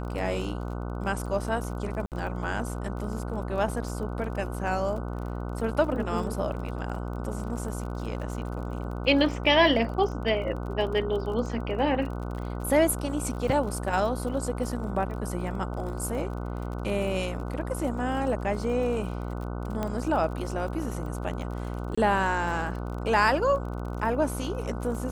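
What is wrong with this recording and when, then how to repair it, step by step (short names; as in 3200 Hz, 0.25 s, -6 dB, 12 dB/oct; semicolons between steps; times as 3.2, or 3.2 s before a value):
buzz 60 Hz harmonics 25 -33 dBFS
crackle 34/s -36 dBFS
2.06–2.12 gap 58 ms
19.83 pop -17 dBFS
21.95–21.98 gap 25 ms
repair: de-click; de-hum 60 Hz, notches 25; interpolate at 2.06, 58 ms; interpolate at 21.95, 25 ms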